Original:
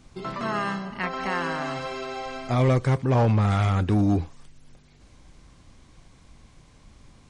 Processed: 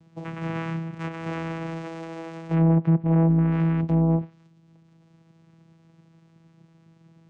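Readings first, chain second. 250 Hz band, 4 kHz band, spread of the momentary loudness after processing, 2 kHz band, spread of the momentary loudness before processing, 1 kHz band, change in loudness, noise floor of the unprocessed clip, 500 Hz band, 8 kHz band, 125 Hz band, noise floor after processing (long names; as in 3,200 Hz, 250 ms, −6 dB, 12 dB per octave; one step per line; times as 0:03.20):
+3.5 dB, below −10 dB, 16 LU, −7.5 dB, 12 LU, −7.0 dB, +0.5 dB, −55 dBFS, −3.5 dB, can't be measured, +0.5 dB, −58 dBFS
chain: channel vocoder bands 4, saw 164 Hz
treble cut that deepens with the level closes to 1,300 Hz, closed at −17 dBFS
level +1.5 dB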